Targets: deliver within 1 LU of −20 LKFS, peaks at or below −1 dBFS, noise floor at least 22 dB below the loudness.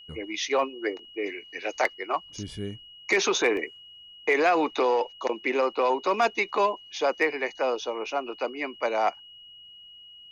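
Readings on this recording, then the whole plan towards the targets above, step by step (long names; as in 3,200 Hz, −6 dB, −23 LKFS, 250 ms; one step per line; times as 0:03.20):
number of dropouts 1; longest dropout 1.7 ms; interfering tone 2,900 Hz; level of the tone −46 dBFS; integrated loudness −27.0 LKFS; sample peak −13.0 dBFS; target loudness −20.0 LKFS
→ repair the gap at 0:03.57, 1.7 ms
notch filter 2,900 Hz, Q 30
level +7 dB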